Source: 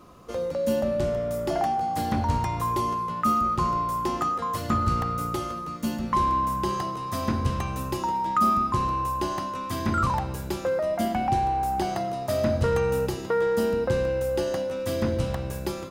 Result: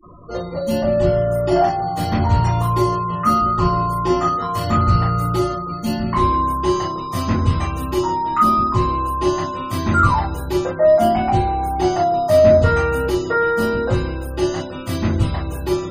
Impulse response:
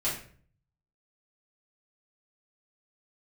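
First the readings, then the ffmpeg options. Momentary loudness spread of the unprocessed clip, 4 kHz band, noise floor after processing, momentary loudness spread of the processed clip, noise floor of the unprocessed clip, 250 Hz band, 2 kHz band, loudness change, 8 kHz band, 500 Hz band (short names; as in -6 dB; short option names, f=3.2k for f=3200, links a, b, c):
7 LU, +7.0 dB, -28 dBFS, 8 LU, -35 dBFS, +8.0 dB, +8.5 dB, +8.0 dB, +4.0 dB, +8.5 dB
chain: -filter_complex "[1:a]atrim=start_sample=2205,atrim=end_sample=3087[a];[0:a][a]afir=irnorm=-1:irlink=0,afftfilt=real='re*gte(hypot(re,im),0.0158)':imag='im*gte(hypot(re,im),0.0158)':win_size=1024:overlap=0.75,volume=1.5dB"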